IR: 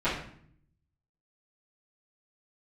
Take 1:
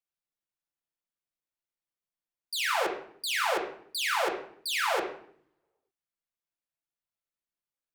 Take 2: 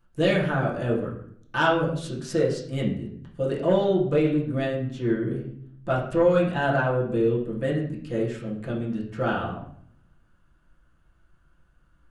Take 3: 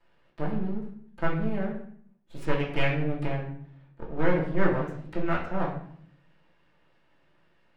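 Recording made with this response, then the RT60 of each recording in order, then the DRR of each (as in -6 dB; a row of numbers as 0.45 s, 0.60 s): 3; 0.60 s, 0.60 s, 0.60 s; -2.5 dB, -6.5 dB, -15.0 dB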